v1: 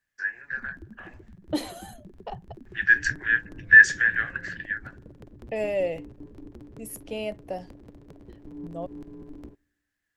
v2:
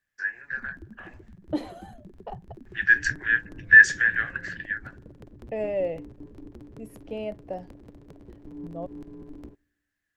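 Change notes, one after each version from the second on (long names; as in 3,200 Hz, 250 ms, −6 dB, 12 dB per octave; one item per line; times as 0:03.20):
second voice: add low-pass filter 1,200 Hz 6 dB per octave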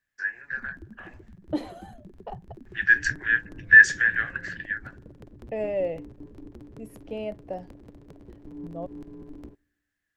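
nothing changed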